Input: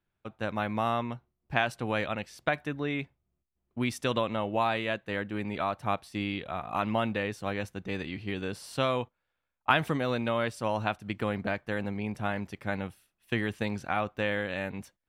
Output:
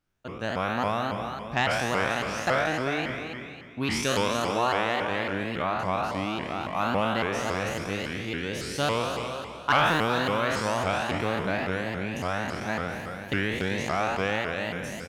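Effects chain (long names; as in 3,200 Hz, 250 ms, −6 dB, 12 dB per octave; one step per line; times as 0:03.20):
peak hold with a decay on every bin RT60 1.85 s
parametric band 5,900 Hz +8 dB 0.53 octaves
soft clipping −12 dBFS, distortion −21 dB
0:05.62–0:06.61: high-shelf EQ 4,300 Hz −7 dB
single-tap delay 388 ms −9.5 dB
pitch modulation by a square or saw wave saw up 3.6 Hz, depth 250 cents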